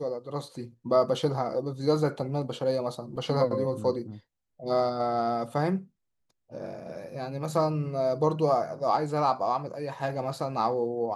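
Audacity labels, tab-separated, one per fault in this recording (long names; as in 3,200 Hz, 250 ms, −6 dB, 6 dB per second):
3.160000	3.160000	drop-out 2.7 ms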